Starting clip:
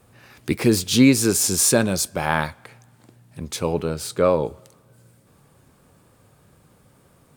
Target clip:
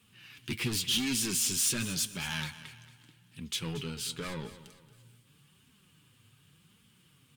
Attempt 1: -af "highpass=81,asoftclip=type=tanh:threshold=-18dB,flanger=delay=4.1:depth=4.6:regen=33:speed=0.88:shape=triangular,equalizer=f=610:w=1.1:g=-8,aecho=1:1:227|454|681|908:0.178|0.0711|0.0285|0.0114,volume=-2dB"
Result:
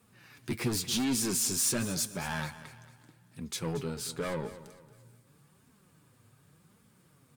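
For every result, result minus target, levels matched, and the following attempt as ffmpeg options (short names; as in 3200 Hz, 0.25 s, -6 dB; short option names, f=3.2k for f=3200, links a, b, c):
500 Hz band +7.0 dB; 4000 Hz band -4.0 dB
-af "highpass=81,asoftclip=type=tanh:threshold=-18dB,flanger=delay=4.1:depth=4.6:regen=33:speed=0.88:shape=triangular,equalizer=f=610:w=1.1:g=-18.5,aecho=1:1:227|454|681|908:0.178|0.0711|0.0285|0.0114,volume=-2dB"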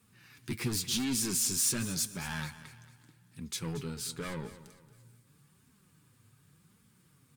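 4000 Hz band -3.5 dB
-af "highpass=81,equalizer=f=3k:w=2.4:g=14,asoftclip=type=tanh:threshold=-18dB,flanger=delay=4.1:depth=4.6:regen=33:speed=0.88:shape=triangular,equalizer=f=610:w=1.1:g=-18.5,aecho=1:1:227|454|681|908:0.178|0.0711|0.0285|0.0114,volume=-2dB"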